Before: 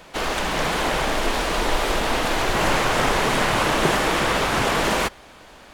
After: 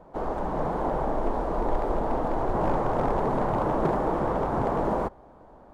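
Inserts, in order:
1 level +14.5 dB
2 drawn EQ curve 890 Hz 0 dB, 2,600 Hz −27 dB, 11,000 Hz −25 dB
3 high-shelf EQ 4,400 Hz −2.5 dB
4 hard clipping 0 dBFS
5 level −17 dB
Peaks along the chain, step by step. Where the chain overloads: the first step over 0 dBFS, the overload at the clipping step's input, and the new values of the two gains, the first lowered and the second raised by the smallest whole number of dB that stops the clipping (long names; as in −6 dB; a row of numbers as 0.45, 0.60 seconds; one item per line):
+8.0, +6.0, +6.0, 0.0, −17.0 dBFS
step 1, 6.0 dB
step 1 +8.5 dB, step 5 −11 dB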